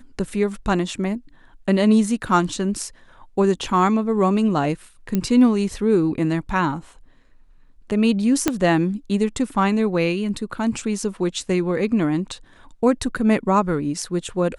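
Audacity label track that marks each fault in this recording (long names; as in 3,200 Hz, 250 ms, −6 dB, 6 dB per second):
5.150000	5.150000	click −9 dBFS
8.480000	8.480000	click −3 dBFS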